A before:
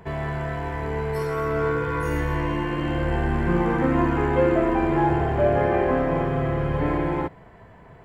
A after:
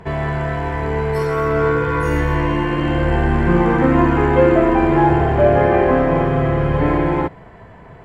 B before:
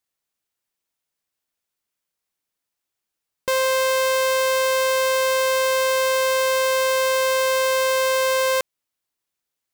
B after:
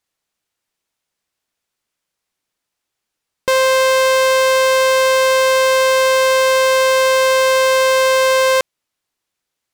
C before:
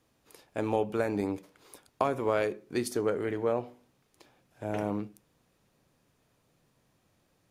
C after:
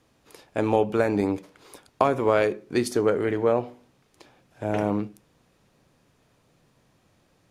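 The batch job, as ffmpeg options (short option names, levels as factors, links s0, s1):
-af "highshelf=f=12000:g=-11.5,volume=2.24"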